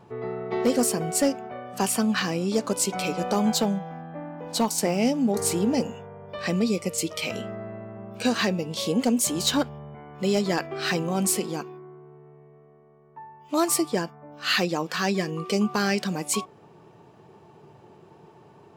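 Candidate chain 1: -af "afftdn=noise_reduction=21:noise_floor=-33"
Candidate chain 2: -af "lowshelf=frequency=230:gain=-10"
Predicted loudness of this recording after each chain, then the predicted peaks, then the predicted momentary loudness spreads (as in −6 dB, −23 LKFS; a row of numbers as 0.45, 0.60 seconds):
−26.0, −27.5 LKFS; −12.5, −13.0 dBFS; 14, 15 LU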